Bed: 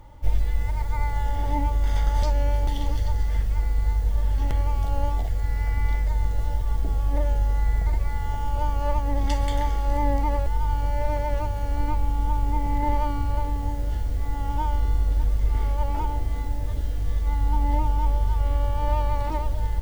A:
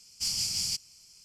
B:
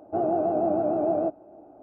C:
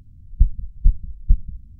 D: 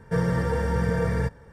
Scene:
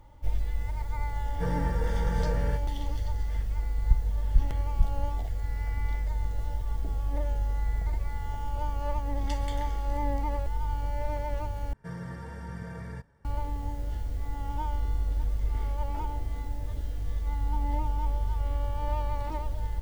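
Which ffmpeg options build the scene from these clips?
-filter_complex "[4:a]asplit=2[s0][s1];[0:a]volume=0.473[s2];[s1]bandreject=f=480:w=5.5[s3];[s2]asplit=2[s4][s5];[s4]atrim=end=11.734[s6];[s3]atrim=end=1.52,asetpts=PTS-STARTPTS,volume=0.2[s7];[s5]atrim=start=13.246[s8];[s0]atrim=end=1.52,asetpts=PTS-STARTPTS,volume=0.376,afade=t=in:d=0.004:c=hsin,afade=t=out:st=1.516:d=0.004:c=hsin,adelay=1290[s9];[3:a]atrim=end=1.79,asetpts=PTS-STARTPTS,volume=0.376,afade=t=in:d=0.004:c=hsin,afade=t=out:st=1.786:d=0.004:c=hsin,adelay=3500[s10];[s6][s7]acrossfade=d=0.004:c1=hsin:c2=hsin[s11];[s11][s8]acrossfade=d=0.004:c1=hsin:c2=hsin[s12];[s12][s9][s10]amix=inputs=3:normalize=0"

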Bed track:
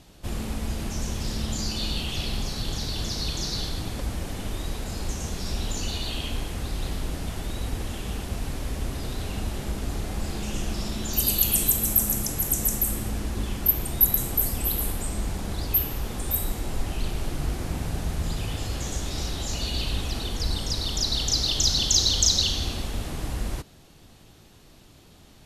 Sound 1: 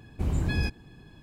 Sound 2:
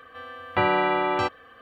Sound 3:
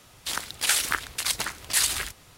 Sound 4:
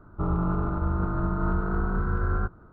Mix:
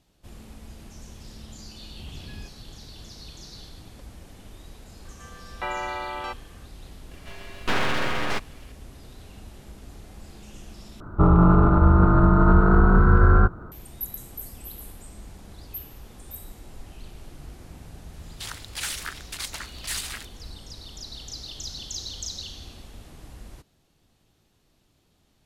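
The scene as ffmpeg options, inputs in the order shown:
-filter_complex "[2:a]asplit=2[s0][s1];[0:a]volume=0.2[s2];[s0]highpass=510[s3];[s1]aeval=exprs='abs(val(0))':c=same[s4];[4:a]alimiter=level_in=6.68:limit=0.891:release=50:level=0:latency=1[s5];[3:a]asplit=2[s6][s7];[s7]highpass=f=720:p=1,volume=5.62,asoftclip=type=tanh:threshold=0.596[s8];[s6][s8]amix=inputs=2:normalize=0,lowpass=f=7800:p=1,volume=0.501[s9];[s2]asplit=2[s10][s11];[s10]atrim=end=11.004[s12];[s5]atrim=end=2.72,asetpts=PTS-STARTPTS,volume=0.531[s13];[s11]atrim=start=13.716[s14];[1:a]atrim=end=1.22,asetpts=PTS-STARTPTS,volume=0.168,afade=t=in:d=0.004:c=hsin,afade=t=out:st=1.216:d=0.004:c=hsin,adelay=1790[s15];[s3]atrim=end=1.61,asetpts=PTS-STARTPTS,volume=0.422,afade=t=in:d=0.004:c=hsin,afade=t=out:st=1.606:d=0.004:c=hsin,adelay=222705S[s16];[s4]atrim=end=1.61,asetpts=PTS-STARTPTS,afade=t=in:d=0.004:c=hsin,afade=t=out:st=1.606:d=0.004:c=hsin,adelay=7110[s17];[s9]atrim=end=2.37,asetpts=PTS-STARTPTS,volume=0.2,afade=t=in:d=0.004:c=hsin,afade=t=out:st=2.366:d=0.004:c=hsin,adelay=18140[s18];[s12][s13]acrossfade=d=0.004:c1=hsin:c2=hsin[s19];[s19][s14]acrossfade=d=0.004:c1=hsin:c2=hsin[s20];[s20][s15][s16][s17][s18]amix=inputs=5:normalize=0"

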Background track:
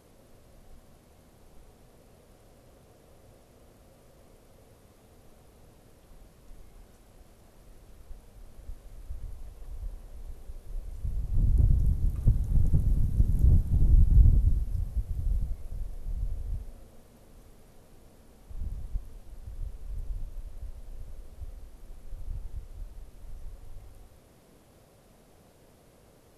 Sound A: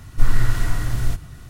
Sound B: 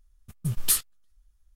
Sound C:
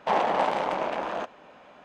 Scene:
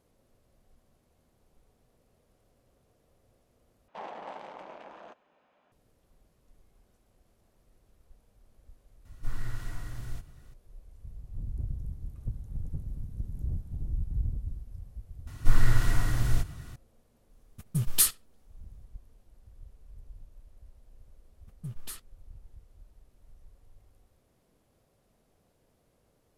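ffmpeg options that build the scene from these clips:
-filter_complex "[1:a]asplit=2[s0][s1];[2:a]asplit=2[s2][s3];[0:a]volume=0.251[s4];[s2]asplit=2[s5][s6];[s6]adelay=71,lowpass=f=4700:p=1,volume=0.0708,asplit=2[s7][s8];[s8]adelay=71,lowpass=f=4700:p=1,volume=0.18[s9];[s5][s7][s9]amix=inputs=3:normalize=0[s10];[s3]highshelf=f=3200:g=-11[s11];[s4]asplit=3[s12][s13][s14];[s12]atrim=end=3.884[s15];[3:a]atrim=end=1.84,asetpts=PTS-STARTPTS,volume=0.126[s16];[s13]atrim=start=5.716:end=15.274[s17];[s1]atrim=end=1.49,asetpts=PTS-STARTPTS,volume=0.631[s18];[s14]atrim=start=16.756[s19];[s0]atrim=end=1.49,asetpts=PTS-STARTPTS,volume=0.15,afade=t=in:d=0.004:c=hsin,afade=t=out:st=1.486:d=0.004:c=hsin,adelay=9050[s20];[s10]atrim=end=1.55,asetpts=PTS-STARTPTS,afade=t=in:d=0.004:c=hsin,afade=t=out:st=1.546:d=0.004:c=hsin,adelay=17300[s21];[s11]atrim=end=1.55,asetpts=PTS-STARTPTS,volume=0.299,afade=t=in:d=0.004:c=hsin,afade=t=out:st=1.546:d=0.004:c=hsin,adelay=21190[s22];[s15][s16]acrossfade=d=0.004:c1=hsin:c2=hsin[s23];[s23][s17]acrossfade=d=0.004:c1=hsin:c2=hsin[s24];[s24][s18]acrossfade=d=0.004:c1=hsin:c2=hsin[s25];[s25][s19]acrossfade=d=0.004:c1=hsin:c2=hsin[s26];[s26][s20][s21][s22]amix=inputs=4:normalize=0"

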